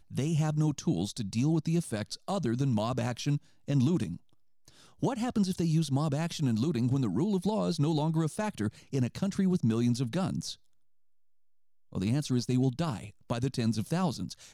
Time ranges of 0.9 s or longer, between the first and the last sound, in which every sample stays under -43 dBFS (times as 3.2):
10.54–11.93